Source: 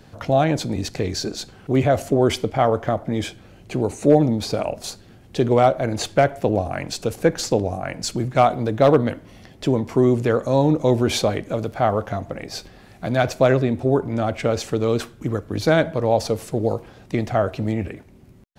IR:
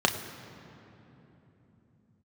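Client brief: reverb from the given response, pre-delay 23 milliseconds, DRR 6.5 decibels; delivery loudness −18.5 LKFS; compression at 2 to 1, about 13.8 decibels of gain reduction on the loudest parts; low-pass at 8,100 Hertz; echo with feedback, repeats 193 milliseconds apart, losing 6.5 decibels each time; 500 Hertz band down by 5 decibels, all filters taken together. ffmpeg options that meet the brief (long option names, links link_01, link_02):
-filter_complex "[0:a]lowpass=8100,equalizer=frequency=500:width_type=o:gain=-6.5,acompressor=threshold=-40dB:ratio=2,aecho=1:1:193|386|579|772|965|1158:0.473|0.222|0.105|0.0491|0.0231|0.0109,asplit=2[link_01][link_02];[1:a]atrim=start_sample=2205,adelay=23[link_03];[link_02][link_03]afir=irnorm=-1:irlink=0,volume=-20dB[link_04];[link_01][link_04]amix=inputs=2:normalize=0,volume=15.5dB"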